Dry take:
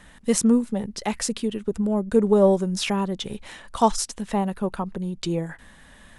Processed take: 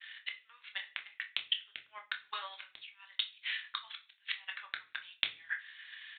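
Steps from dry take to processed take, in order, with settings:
de-essing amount 55%
inverse Chebyshev high-pass filter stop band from 330 Hz, stop band 80 dB
downward expander −56 dBFS
transient designer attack +12 dB, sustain −8 dB
in parallel at 0 dB: downward compressor, threshold −36 dBFS, peak gain reduction 18 dB
on the sum: gate with flip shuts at −15 dBFS, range −26 dB
double-tracking delay 27 ms −12.5 dB
on a send at −4.5 dB: convolution reverb RT60 0.40 s, pre-delay 3 ms
on the sum: downsampling to 8,000 Hz

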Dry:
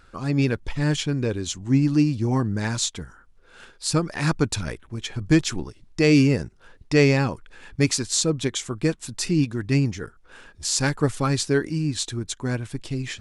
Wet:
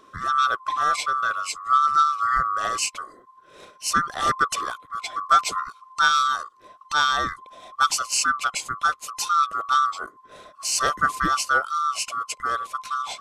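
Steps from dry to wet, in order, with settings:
neighbouring bands swapped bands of 1,000 Hz
0:06.08–0:07.81: parametric band 1,400 Hz −6.5 dB 0.48 octaves

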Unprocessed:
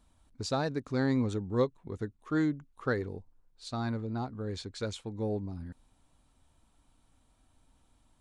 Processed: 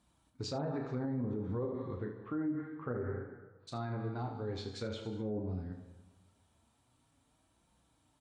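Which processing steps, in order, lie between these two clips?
0:01.94–0:03.67: low-pass filter 3,400 Hz → 1,400 Hz 24 dB per octave
convolution reverb RT60 1.2 s, pre-delay 98 ms, DRR 10.5 dB
flanger 0.26 Hz, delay 5.5 ms, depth 5.9 ms, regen −32%
high-pass filter 61 Hz 24 dB per octave
treble cut that deepens with the level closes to 870 Hz, closed at −29 dBFS
ambience of single reflections 33 ms −7 dB, 75 ms −10 dB
brickwall limiter −29.5 dBFS, peak gain reduction 10.5 dB
level +1 dB

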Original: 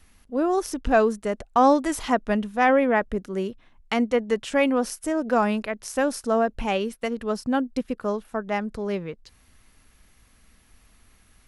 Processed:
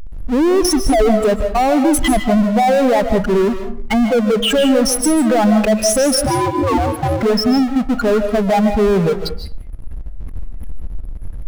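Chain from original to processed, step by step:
expanding power law on the bin magnitudes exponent 3.1
power curve on the samples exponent 0.5
brickwall limiter −17 dBFS, peak gain reduction 8.5 dB
comb and all-pass reverb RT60 0.44 s, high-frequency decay 0.55×, pre-delay 110 ms, DRR 7 dB
0:06.26–0:07.23: ring modulation 320 Hz
level +7 dB

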